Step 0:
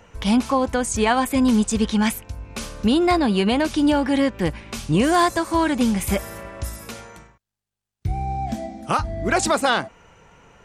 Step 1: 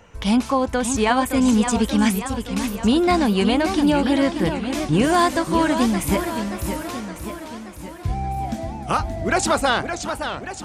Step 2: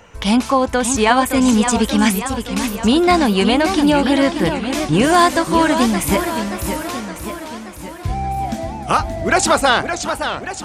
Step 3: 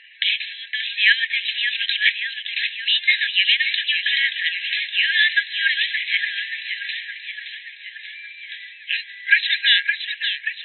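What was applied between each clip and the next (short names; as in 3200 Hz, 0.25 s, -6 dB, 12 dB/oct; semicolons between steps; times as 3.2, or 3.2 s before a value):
warbling echo 0.574 s, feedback 60%, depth 207 cents, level -8 dB
low shelf 350 Hz -4.5 dB; gain +6 dB
FFT band-pass 1600–4100 Hz; gain +6.5 dB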